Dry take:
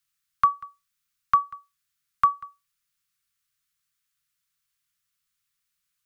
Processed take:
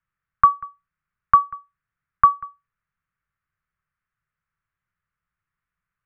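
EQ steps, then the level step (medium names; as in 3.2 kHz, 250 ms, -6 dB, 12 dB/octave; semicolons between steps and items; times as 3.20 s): low-pass 1.8 kHz 24 dB/octave; bass shelf 140 Hz +5.5 dB; +6.0 dB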